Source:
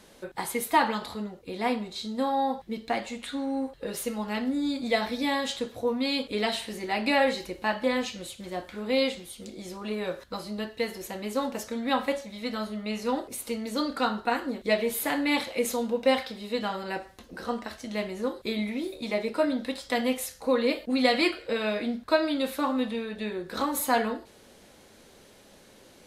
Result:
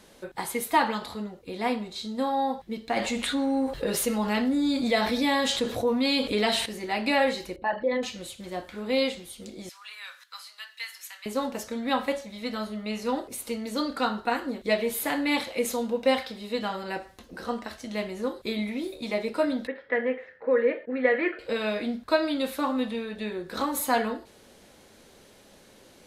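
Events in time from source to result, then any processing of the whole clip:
0:02.96–0:06.66: envelope flattener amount 50%
0:07.56–0:08.03: spectral envelope exaggerated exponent 2
0:09.69–0:11.26: high-pass filter 1,300 Hz 24 dB per octave
0:19.67–0:21.39: loudspeaker in its box 190–2,000 Hz, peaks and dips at 200 Hz −8 dB, 290 Hz −5 dB, 460 Hz +6 dB, 750 Hz −7 dB, 1,100 Hz −7 dB, 1,800 Hz +10 dB

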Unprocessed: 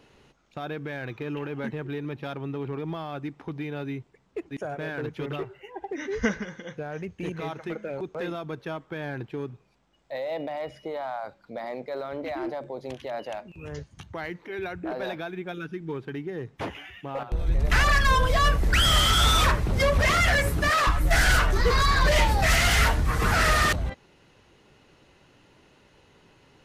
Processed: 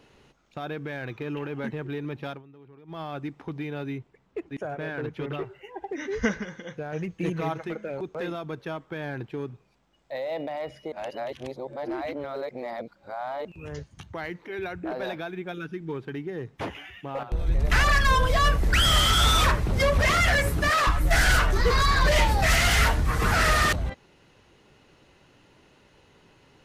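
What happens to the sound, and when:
0:02.29–0:03.01: duck −18.5 dB, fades 0.14 s
0:03.98–0:05.44: bass and treble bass 0 dB, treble −6 dB
0:06.92–0:07.63: comb filter 6.1 ms, depth 92%
0:10.92–0:13.45: reverse

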